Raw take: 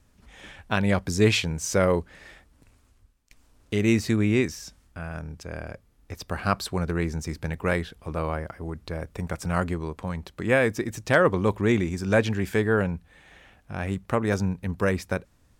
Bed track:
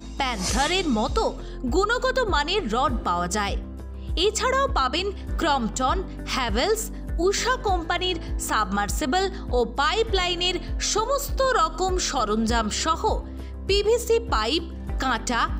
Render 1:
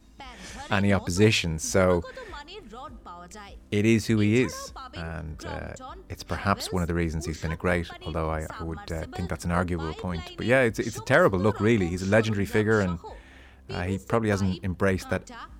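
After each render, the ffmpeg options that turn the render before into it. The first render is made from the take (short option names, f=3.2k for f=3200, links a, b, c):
-filter_complex "[1:a]volume=-18.5dB[a];[0:a][a]amix=inputs=2:normalize=0"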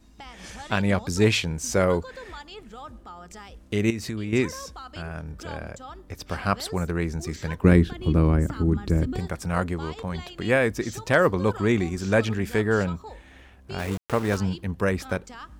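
-filter_complex "[0:a]asettb=1/sr,asplit=3[a][b][c];[a]atrim=end=3.904[d];[b]atrim=start=3.9:end=4.33,asetpts=PTS-STARTPTS,afade=t=in:d=0.004:c=qsin,afade=t=out:st=0.426:d=0.004:c=qsin,acompressor=threshold=-27dB:ratio=6:attack=3.2:release=140:knee=1:detection=peak[e];[c]atrim=start=4.326[f];[d][e]acrossfade=d=0.004:c1=hsin:c2=qsin[g];[g][f]acrossfade=d=0.004:c1=qsin:c2=hsin,asettb=1/sr,asplit=3[h][i][j];[h]atrim=end=7.644[k];[i]atrim=start=7.64:end=9.19,asetpts=PTS-STARTPTS,afade=t=in:d=0.004:c=qsin,afade=t=out:st=1.546:d=0.004:c=qsin,lowshelf=f=440:t=q:w=1.5:g=11.5[l];[j]atrim=start=9.186[m];[k][l]acrossfade=d=0.004:c1=hsin:c2=qsin[n];[n][m]acrossfade=d=0.004:c1=qsin:c2=hsin,asplit=3[o][p][q];[o]afade=t=out:st=13.78:d=0.02[r];[p]aeval=exprs='val(0)*gte(abs(val(0)),0.0251)':c=same,afade=t=in:st=13.78:d=0.02,afade=t=out:st=14.36:d=0.02[s];[q]afade=t=in:st=14.36:d=0.02[t];[r][s][t]amix=inputs=3:normalize=0"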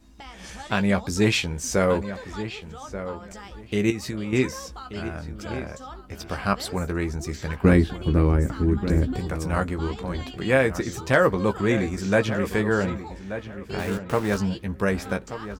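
-filter_complex "[0:a]asplit=2[a][b];[b]adelay=15,volume=-8dB[c];[a][c]amix=inputs=2:normalize=0,asplit=2[d][e];[e]adelay=1182,lowpass=f=2.8k:p=1,volume=-11.5dB,asplit=2[f][g];[g]adelay=1182,lowpass=f=2.8k:p=1,volume=0.21,asplit=2[h][i];[i]adelay=1182,lowpass=f=2.8k:p=1,volume=0.21[j];[d][f][h][j]amix=inputs=4:normalize=0"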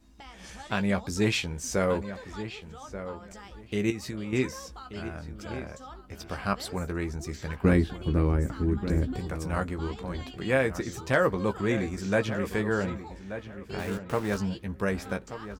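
-af "volume=-5dB"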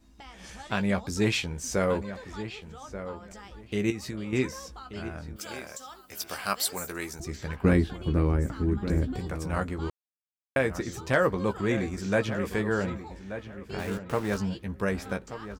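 -filter_complex "[0:a]asettb=1/sr,asplit=3[a][b][c];[a]atrim=end=5.364[d];[b]atrim=start=5.36:end=7.2,asetpts=PTS-STARTPTS,afade=t=in:d=0.004:c=qsin,afade=t=out:st=1.836:d=0.004:c=qsin,aemphasis=mode=production:type=riaa[e];[c]atrim=start=7.196[f];[d][e]acrossfade=d=0.004:c1=hsin:c2=qsin[g];[g][f]acrossfade=d=0.004:c1=qsin:c2=hsin,asplit=3[h][i][j];[h]atrim=end=9.9,asetpts=PTS-STARTPTS,afade=t=out:st=9.896:d=0.004:c=hsin[k];[i]atrim=start=9.9:end=10.56,asetpts=PTS-STARTPTS,volume=0[l];[j]atrim=start=10.56,asetpts=PTS-STARTPTS,afade=t=in:d=0.004:c=hsin[m];[k][l][m]concat=n=3:v=0:a=1"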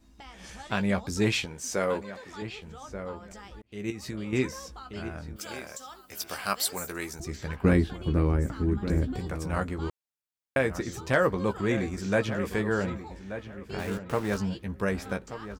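-filter_complex "[0:a]asettb=1/sr,asplit=3[a][b][c];[a]atrim=end=1.454[d];[b]atrim=start=1.45:end=2.42,asetpts=PTS-STARTPTS,afade=t=in:d=0.004:c=qsin,afade=t=out:st=0.966:d=0.004:c=qsin,highpass=f=310:p=1[e];[c]atrim=start=2.416[f];[d][e]acrossfade=d=0.004:c1=hsin:c2=qsin[g];[g][f]acrossfade=d=0.004:c1=qsin:c2=hsin,asplit=2[h][i];[h]atrim=end=3.62,asetpts=PTS-STARTPTS,afade=t=out:st=3.616:d=0.004:c=hsin[j];[i]atrim=start=3.62,asetpts=PTS-STARTPTS,afade=t=in:d=0.5[k];[j][k]concat=n=2:v=0:a=1"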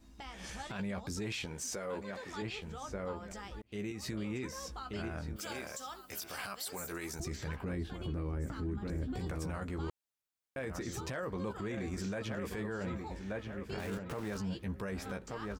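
-af "acompressor=threshold=-35dB:ratio=2,alimiter=level_in=6.5dB:limit=-24dB:level=0:latency=1:release=13,volume=-6.5dB"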